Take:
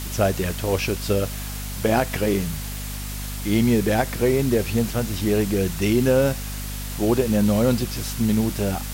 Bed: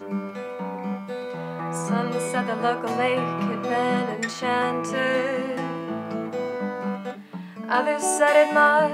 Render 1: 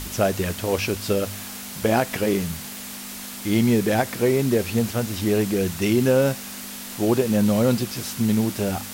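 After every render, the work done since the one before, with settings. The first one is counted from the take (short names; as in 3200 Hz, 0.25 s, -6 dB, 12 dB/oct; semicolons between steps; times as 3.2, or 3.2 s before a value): de-hum 50 Hz, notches 3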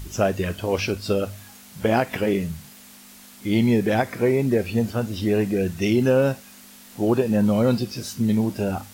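noise print and reduce 11 dB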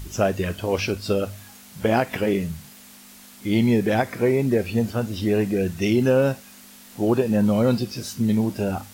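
nothing audible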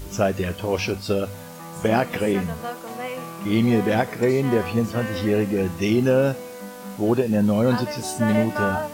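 add bed -8.5 dB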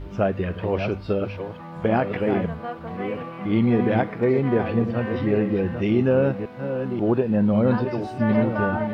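reverse delay 0.538 s, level -8 dB; air absorption 390 m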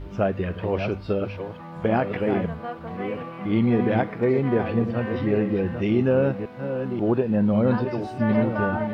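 gain -1 dB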